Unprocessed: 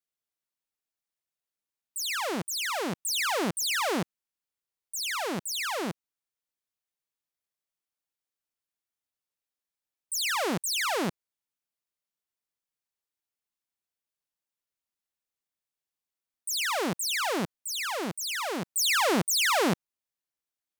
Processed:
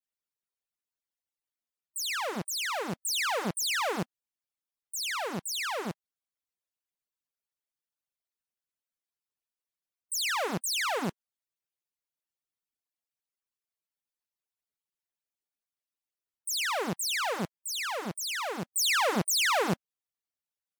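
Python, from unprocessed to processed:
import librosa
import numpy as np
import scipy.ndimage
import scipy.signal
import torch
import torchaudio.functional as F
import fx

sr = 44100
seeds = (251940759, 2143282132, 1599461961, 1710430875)

y = fx.hpss_only(x, sr, part='percussive')
y = y * 10.0 ** (-1.0 / 20.0)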